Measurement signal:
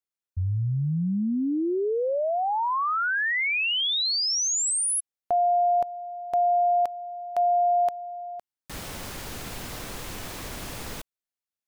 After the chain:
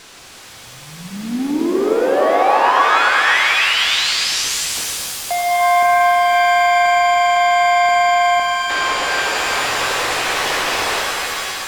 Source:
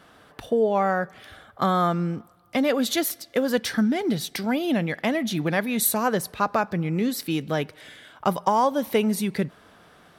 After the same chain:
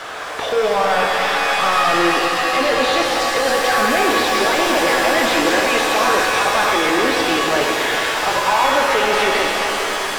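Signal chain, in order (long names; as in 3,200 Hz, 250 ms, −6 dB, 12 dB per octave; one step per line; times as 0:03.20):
high-pass filter 350 Hz 24 dB per octave
in parallel at +1.5 dB: compressor whose output falls as the input rises −35 dBFS
on the sum: background noise violet −38 dBFS
mid-hump overdrive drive 32 dB, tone 3,000 Hz, clips at −5 dBFS
high-frequency loss of the air 81 metres
on a send: delay that swaps between a low-pass and a high-pass 104 ms, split 1,200 Hz, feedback 82%, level −10.5 dB
on the sum: reverb with rising layers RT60 3.1 s, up +7 semitones, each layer −2 dB, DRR 0.5 dB
level −7 dB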